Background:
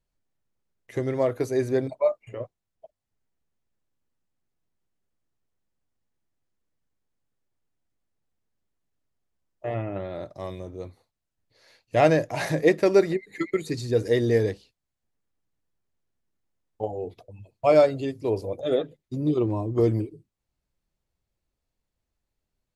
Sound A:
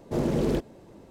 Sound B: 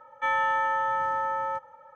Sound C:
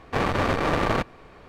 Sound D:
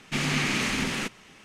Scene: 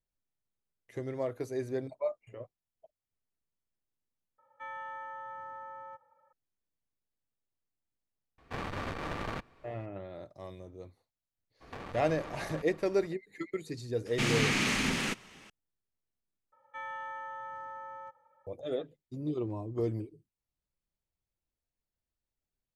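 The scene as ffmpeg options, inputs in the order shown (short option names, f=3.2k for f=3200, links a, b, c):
-filter_complex "[2:a]asplit=2[a][b];[3:a]asplit=2[c][d];[0:a]volume=-10.5dB[e];[a]highshelf=f=2.7k:g=-5.5[f];[c]equalizer=f=490:w=0.66:g=-3.5[g];[d]acompressor=threshold=-33dB:ratio=6:attack=3.2:release=140:knee=1:detection=peak[h];[e]asplit=3[i][j][k];[i]atrim=end=4.384[l];[f]atrim=end=1.95,asetpts=PTS-STARTPTS,volume=-16dB[m];[j]atrim=start=6.326:end=16.524[n];[b]atrim=end=1.95,asetpts=PTS-STARTPTS,volume=-15.5dB[o];[k]atrim=start=18.466[p];[g]atrim=end=1.48,asetpts=PTS-STARTPTS,volume=-12.5dB,afade=t=in:d=0.004:c=hsin,afade=t=out:st=1.476:d=0.004:c=hsin,adelay=8380[q];[h]atrim=end=1.48,asetpts=PTS-STARTPTS,volume=-6.5dB,afade=t=in:d=0.02,afade=t=out:st=1.46:d=0.02,adelay=11600[r];[4:a]atrim=end=1.44,asetpts=PTS-STARTPTS,volume=-2.5dB,afade=t=in:d=0.004:c=hsin,afade=t=out:st=1.436:d=0.004:c=hsin,adelay=14060[s];[l][m]acrossfade=d=0.004:c1=hsin:c2=hsin[t];[t][n]acrossfade=d=0.004:c1=hsin:c2=hsin[u];[u][o]acrossfade=d=0.004:c1=hsin:c2=hsin[v];[v][p]acrossfade=d=0.004:c1=hsin:c2=hsin[w];[w][q][r][s]amix=inputs=4:normalize=0"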